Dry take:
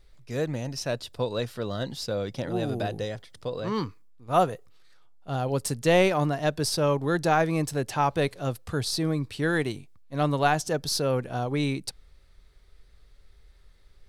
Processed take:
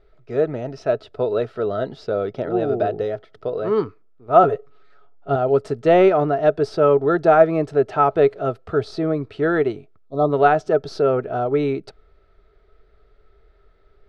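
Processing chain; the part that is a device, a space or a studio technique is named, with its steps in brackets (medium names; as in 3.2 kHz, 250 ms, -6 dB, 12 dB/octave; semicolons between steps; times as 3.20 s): inside a cardboard box (low-pass 2.9 kHz 12 dB/octave; small resonant body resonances 420/640/1300 Hz, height 16 dB, ringing for 35 ms); 4.43–5.36 s: comb 7.1 ms, depth 98%; 10.06–10.32 s: spectral selection erased 1.3–3.3 kHz; trim -1 dB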